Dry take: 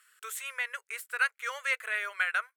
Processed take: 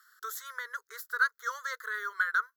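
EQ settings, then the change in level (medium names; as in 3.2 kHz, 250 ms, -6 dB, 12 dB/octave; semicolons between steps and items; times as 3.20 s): static phaser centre 640 Hz, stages 6; dynamic bell 2.3 kHz, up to -4 dB, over -46 dBFS, Q 0.76; static phaser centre 2.7 kHz, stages 6; +7.5 dB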